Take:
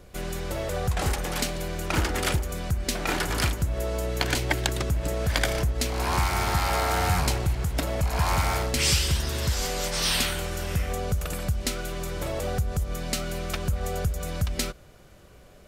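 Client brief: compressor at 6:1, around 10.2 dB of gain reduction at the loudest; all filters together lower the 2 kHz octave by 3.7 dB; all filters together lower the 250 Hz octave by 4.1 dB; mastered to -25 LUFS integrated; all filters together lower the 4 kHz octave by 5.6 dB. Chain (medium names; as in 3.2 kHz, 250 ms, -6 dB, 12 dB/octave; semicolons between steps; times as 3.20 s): peaking EQ 250 Hz -6.5 dB; peaking EQ 2 kHz -3 dB; peaking EQ 4 kHz -6.5 dB; compression 6:1, threshold -32 dBFS; trim +11.5 dB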